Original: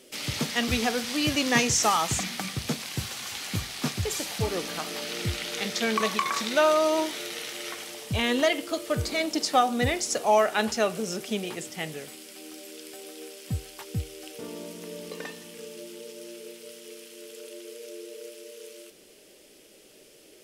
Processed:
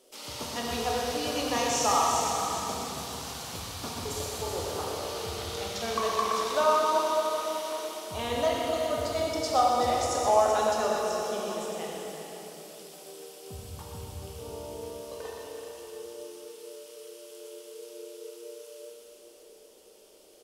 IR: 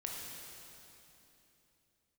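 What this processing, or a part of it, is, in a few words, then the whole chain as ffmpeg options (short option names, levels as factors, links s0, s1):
cave: -filter_complex "[0:a]equalizer=f=125:t=o:w=1:g=-11,equalizer=f=250:t=o:w=1:g=-4,equalizer=f=500:t=o:w=1:g=3,equalizer=f=1000:t=o:w=1:g=7,equalizer=f=2000:t=o:w=1:g=-9,aecho=1:1:380:0.335[s0];[1:a]atrim=start_sample=2205[s1];[s0][s1]afir=irnorm=-1:irlink=0,asplit=2[s2][s3];[s3]adelay=122.4,volume=0.501,highshelf=f=4000:g=-2.76[s4];[s2][s4]amix=inputs=2:normalize=0,volume=0.631"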